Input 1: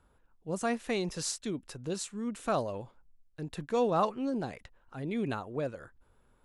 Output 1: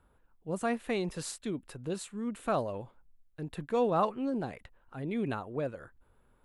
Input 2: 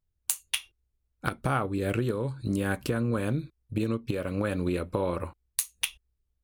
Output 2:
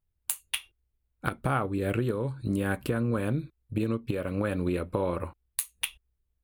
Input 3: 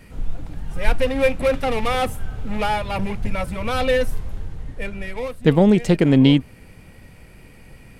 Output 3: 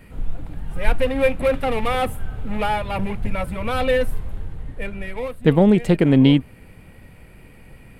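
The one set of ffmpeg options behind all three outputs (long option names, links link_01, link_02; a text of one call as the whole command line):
ffmpeg -i in.wav -af "equalizer=frequency=5800:width=1.5:gain=-10" out.wav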